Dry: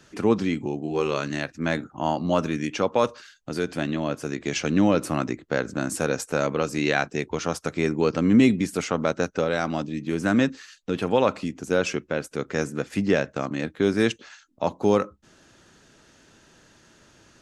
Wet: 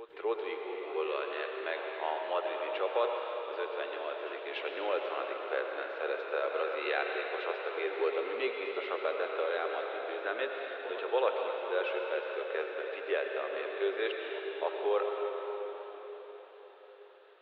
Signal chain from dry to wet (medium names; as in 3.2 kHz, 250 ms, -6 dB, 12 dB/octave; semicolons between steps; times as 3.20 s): Chebyshev band-pass 380–3800 Hz, order 5; pre-echo 287 ms -15 dB; reverberation RT60 4.7 s, pre-delay 84 ms, DRR 1 dB; modulated delay 269 ms, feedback 76%, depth 159 cents, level -23 dB; trim -8.5 dB